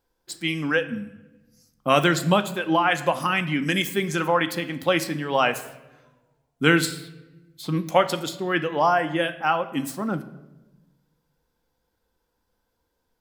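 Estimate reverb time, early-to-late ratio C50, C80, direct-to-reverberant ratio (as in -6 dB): 1.1 s, 14.5 dB, 16.5 dB, 8.0 dB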